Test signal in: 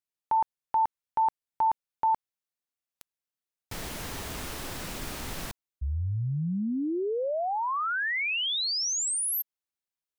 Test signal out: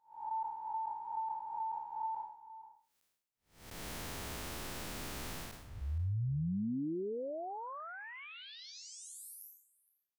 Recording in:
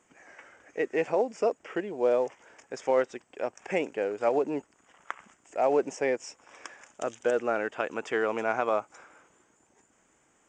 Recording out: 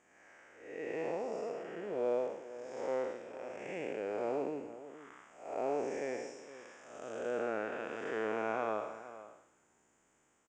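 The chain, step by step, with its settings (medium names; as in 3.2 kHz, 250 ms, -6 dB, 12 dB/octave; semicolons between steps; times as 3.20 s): spectral blur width 266 ms; echo from a far wall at 80 m, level -14 dB; trim -4.5 dB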